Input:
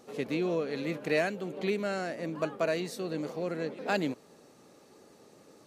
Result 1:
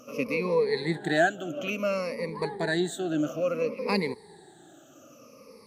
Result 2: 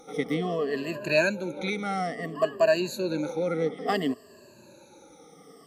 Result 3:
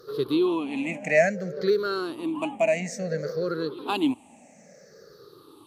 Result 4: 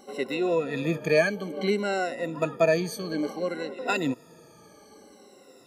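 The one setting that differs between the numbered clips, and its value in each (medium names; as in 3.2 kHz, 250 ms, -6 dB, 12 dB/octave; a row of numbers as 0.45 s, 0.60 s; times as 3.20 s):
drifting ripple filter, ripples per octave: 0.89, 1.4, 0.59, 2.1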